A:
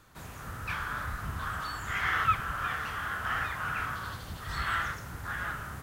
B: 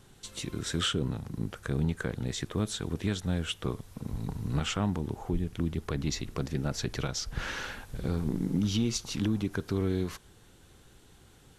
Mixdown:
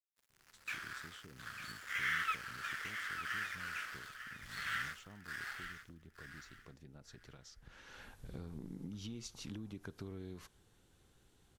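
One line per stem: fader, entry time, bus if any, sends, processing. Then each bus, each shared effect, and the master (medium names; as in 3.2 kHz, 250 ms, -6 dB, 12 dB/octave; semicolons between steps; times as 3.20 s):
+1.5 dB, 0.00 s, no send, echo send -9.5 dB, inverse Chebyshev high-pass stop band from 660 Hz, stop band 50 dB; tilt EQ -2.5 dB/octave; crossover distortion -49.5 dBFS
7.84 s -21.5 dB -> 8.06 s -12 dB, 0.30 s, no send, no echo send, compression, threshold -30 dBFS, peak gain reduction 7 dB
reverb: none
echo: feedback delay 898 ms, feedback 20%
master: none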